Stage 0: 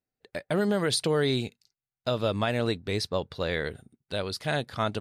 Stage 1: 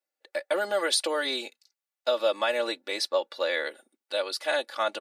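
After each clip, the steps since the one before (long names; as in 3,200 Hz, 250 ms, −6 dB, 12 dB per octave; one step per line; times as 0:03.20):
high-pass filter 420 Hz 24 dB per octave
comb filter 3.5 ms, depth 95%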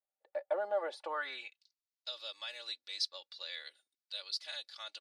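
band-pass filter sweep 730 Hz → 4,600 Hz, 0:00.98–0:01.75
level −3 dB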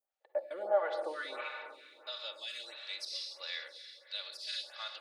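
convolution reverb RT60 2.6 s, pre-delay 45 ms, DRR 4.5 dB
phaser with staggered stages 1.5 Hz
level +4.5 dB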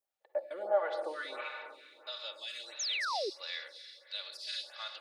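sound drawn into the spectrogram fall, 0:02.79–0:03.30, 350–7,100 Hz −35 dBFS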